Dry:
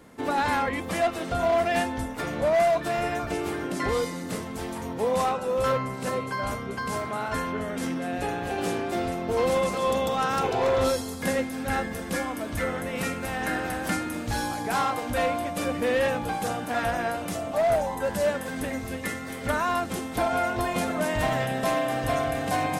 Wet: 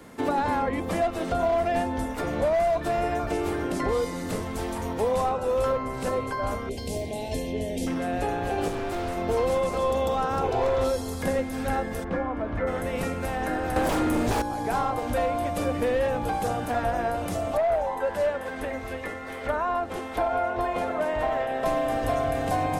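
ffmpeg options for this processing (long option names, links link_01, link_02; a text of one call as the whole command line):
ffmpeg -i in.wav -filter_complex "[0:a]asettb=1/sr,asplit=3[link_01][link_02][link_03];[link_01]atrim=end=6.694[link_04];[link_02]atrim=start=6.69:end=7.87,asetpts=PTS-STARTPTS,afade=type=in:duration=0.004:curve=qsin,afade=type=out:start_time=1.176:duration=0.004:curve=qsin,asuperstop=centerf=1300:order=4:qfactor=0.66[link_05];[link_03]atrim=start=7.866[link_06];[link_04][link_05]acrossfade=duration=0.004:curve1=hsin:curve2=qsin[link_07];[link_07][link_06]acrossfade=duration=0.004:curve1=qsin:curve2=hsin,asettb=1/sr,asplit=3[link_08][link_09][link_10];[link_08]atrim=end=8.684[link_11];[link_09]atrim=start=8.68:end=9.17,asetpts=PTS-STARTPTS,afade=type=in:duration=0.004:curve=qsin,afade=type=out:start_time=0.486:duration=0.004:curve=qsin,asoftclip=type=hard:threshold=-30.5dB[link_12];[link_10]atrim=start=9.166[link_13];[link_11][link_12]acrossfade=duration=0.004:curve1=hsin:curve2=qsin[link_14];[link_14][link_13]acrossfade=duration=0.004:curve1=qsin:curve2=hsin,asplit=3[link_15][link_16][link_17];[link_15]afade=type=out:start_time=12.03:duration=0.02[link_18];[link_16]lowpass=1500,afade=type=in:start_time=12.03:duration=0.02,afade=type=out:start_time=12.66:duration=0.02[link_19];[link_17]afade=type=in:start_time=12.66:duration=0.02[link_20];[link_18][link_19][link_20]amix=inputs=3:normalize=0,asettb=1/sr,asplit=3[link_21][link_22][link_23];[link_21]atrim=end=13.764[link_24];[link_22]atrim=start=13.76:end=14.42,asetpts=PTS-STARTPTS,afade=type=in:duration=0.004:curve=qsin,afade=type=out:start_time=0.656:duration=0.004:curve=qsin,aeval=exprs='0.15*sin(PI/2*3.55*val(0)/0.15)':channel_layout=same[link_25];[link_23]atrim=start=14.416[link_26];[link_24][link_25]acrossfade=duration=0.004:curve1=hsin:curve2=qsin[link_27];[link_27][link_26]acrossfade=duration=0.004:curve1=qsin:curve2=hsin,asettb=1/sr,asplit=3[link_28][link_29][link_30];[link_28]atrim=end=17.574[link_31];[link_29]atrim=start=17.57:end=21.66,asetpts=PTS-STARTPTS,afade=type=in:duration=0.004:curve=qsin,afade=type=out:start_time=4.086:duration=0.004:curve=qsin,bass=frequency=250:gain=-14,treble=frequency=4000:gain=-11[link_32];[link_30]atrim=start=21.656[link_33];[link_31][link_32]acrossfade=duration=0.004:curve1=hsin:curve2=qsin[link_34];[link_34][link_33]acrossfade=duration=0.004:curve1=qsin:curve2=hsin,bandreject=frequency=65.35:width_type=h:width=4,bandreject=frequency=130.7:width_type=h:width=4,bandreject=frequency=196.05:width_type=h:width=4,asubboost=boost=7:cutoff=66,acrossover=split=140|990[link_35][link_36][link_37];[link_35]acompressor=threshold=-40dB:ratio=4[link_38];[link_36]acompressor=threshold=-27dB:ratio=4[link_39];[link_37]acompressor=threshold=-43dB:ratio=4[link_40];[link_38][link_39][link_40]amix=inputs=3:normalize=0,volume=4.5dB" out.wav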